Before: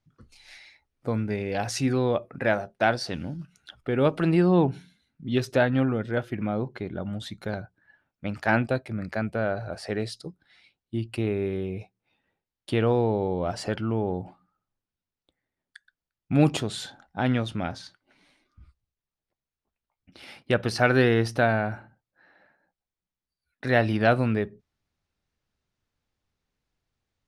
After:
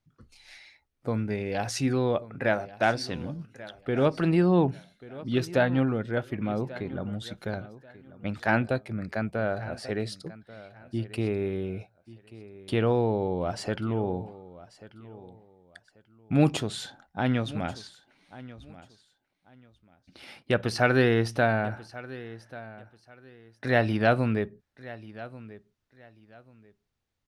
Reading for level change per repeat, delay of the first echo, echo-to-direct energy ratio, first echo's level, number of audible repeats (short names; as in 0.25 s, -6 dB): -12.0 dB, 1.138 s, -17.5 dB, -18.0 dB, 2